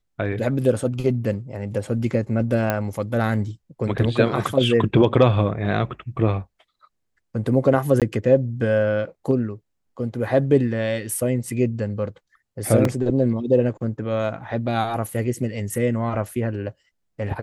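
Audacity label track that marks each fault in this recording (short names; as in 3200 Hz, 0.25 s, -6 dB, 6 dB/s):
2.700000	2.700000	pop -8 dBFS
8.000000	8.020000	gap 17 ms
12.850000	12.850000	gap 2.1 ms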